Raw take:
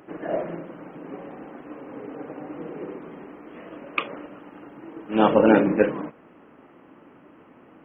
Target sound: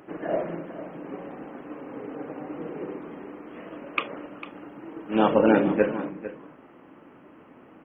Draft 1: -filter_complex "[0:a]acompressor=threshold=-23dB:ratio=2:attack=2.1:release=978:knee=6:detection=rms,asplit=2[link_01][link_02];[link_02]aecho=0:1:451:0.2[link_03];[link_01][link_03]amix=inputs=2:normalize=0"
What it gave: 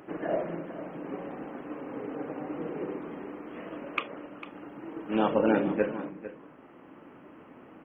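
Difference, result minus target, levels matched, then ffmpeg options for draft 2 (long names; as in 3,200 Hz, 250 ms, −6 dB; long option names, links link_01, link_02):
downward compressor: peak gain reduction +5.5 dB
-filter_complex "[0:a]acompressor=threshold=-12dB:ratio=2:attack=2.1:release=978:knee=6:detection=rms,asplit=2[link_01][link_02];[link_02]aecho=0:1:451:0.2[link_03];[link_01][link_03]amix=inputs=2:normalize=0"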